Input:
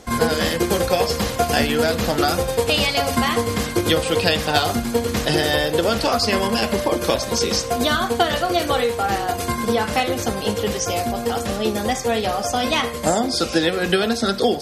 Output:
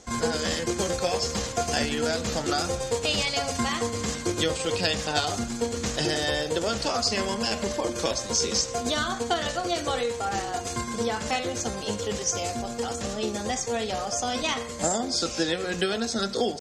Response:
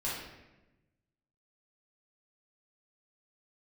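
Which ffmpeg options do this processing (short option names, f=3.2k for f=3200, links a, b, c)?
-filter_complex "[0:a]lowpass=f=7k:t=q:w=3.1,asplit=2[a][b];[b]highshelf=f=3k:t=q:w=1.5:g=-11.5[c];[1:a]atrim=start_sample=2205,asetrate=39690,aresample=44100[d];[c][d]afir=irnorm=-1:irlink=0,volume=-25dB[e];[a][e]amix=inputs=2:normalize=0,atempo=0.88,volume=-8.5dB"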